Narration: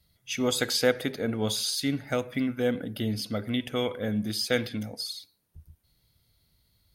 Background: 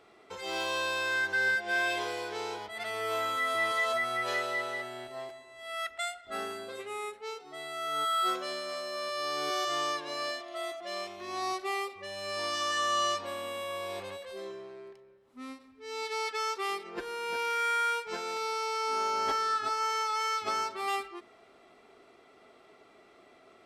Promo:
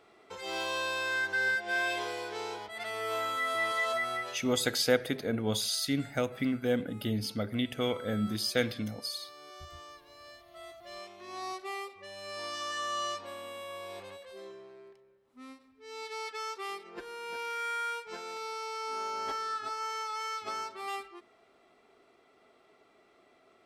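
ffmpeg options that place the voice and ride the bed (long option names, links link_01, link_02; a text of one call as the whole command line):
ffmpeg -i stem1.wav -i stem2.wav -filter_complex "[0:a]adelay=4050,volume=-2.5dB[link_01];[1:a]volume=11dB,afade=type=out:start_time=4.14:duration=0.24:silence=0.149624,afade=type=in:start_time=10.22:duration=1.12:silence=0.237137[link_02];[link_01][link_02]amix=inputs=2:normalize=0" out.wav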